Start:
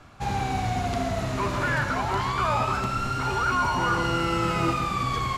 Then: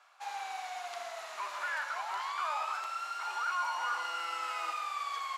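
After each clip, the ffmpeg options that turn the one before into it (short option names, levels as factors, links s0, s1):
-af "highpass=f=740:w=0.5412,highpass=f=740:w=1.3066,volume=0.376"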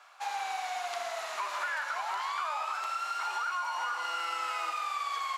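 -af "acompressor=threshold=0.0141:ratio=6,volume=2.11"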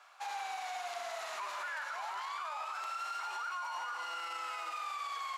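-af "alimiter=level_in=1.78:limit=0.0631:level=0:latency=1:release=37,volume=0.562,volume=0.708"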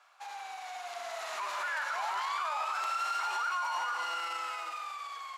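-af "dynaudnorm=f=290:g=9:m=3.16,volume=0.668"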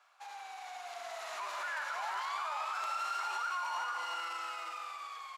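-af "aecho=1:1:353:0.355,volume=0.631"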